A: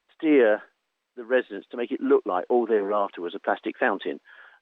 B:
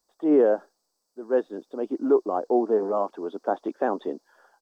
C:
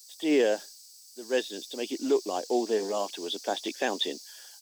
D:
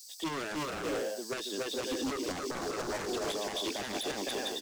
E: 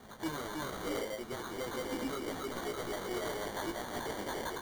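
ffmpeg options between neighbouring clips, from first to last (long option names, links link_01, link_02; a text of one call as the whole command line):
ffmpeg -i in.wav -af "firequalizer=gain_entry='entry(830,0);entry(2100,-21);entry(3100,-20);entry(4700,10)':delay=0.05:min_phase=1" out.wav
ffmpeg -i in.wav -af "aexciter=amount=13.8:drive=9:freq=2100,volume=-5dB" out.wav
ffmpeg -i in.wav -af "aecho=1:1:280|448|548.8|609.3|645.6:0.631|0.398|0.251|0.158|0.1,aeval=exprs='0.224*(cos(1*acos(clip(val(0)/0.224,-1,1)))-cos(1*PI/2))+0.0447*(cos(3*acos(clip(val(0)/0.224,-1,1)))-cos(3*PI/2))+0.1*(cos(7*acos(clip(val(0)/0.224,-1,1)))-cos(7*PI/2))':channel_layout=same,alimiter=limit=-22dB:level=0:latency=1:release=42,volume=-7.5dB" out.wav
ffmpeg -i in.wav -af "flanger=delay=16.5:depth=5.6:speed=0.77,acrusher=samples=17:mix=1:aa=0.000001" out.wav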